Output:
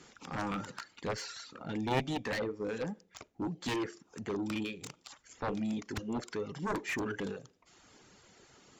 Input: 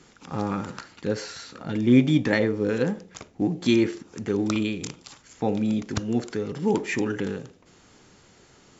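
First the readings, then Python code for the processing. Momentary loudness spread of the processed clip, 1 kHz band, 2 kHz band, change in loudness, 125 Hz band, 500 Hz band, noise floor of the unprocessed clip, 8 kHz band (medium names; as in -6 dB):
11 LU, -3.5 dB, -7.5 dB, -12.0 dB, -13.0 dB, -11.0 dB, -56 dBFS, no reading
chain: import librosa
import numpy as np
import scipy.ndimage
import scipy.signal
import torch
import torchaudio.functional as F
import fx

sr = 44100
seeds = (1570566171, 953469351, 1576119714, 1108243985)

y = fx.rider(x, sr, range_db=4, speed_s=2.0)
y = fx.dereverb_blind(y, sr, rt60_s=0.73)
y = fx.low_shelf(y, sr, hz=270.0, db=-5.0)
y = fx.cheby_harmonics(y, sr, harmonics=(3, 7), levels_db=(-8, -20), full_scale_db=-8.0)
y = fx.slew_limit(y, sr, full_power_hz=120.0)
y = y * librosa.db_to_amplitude(-4.0)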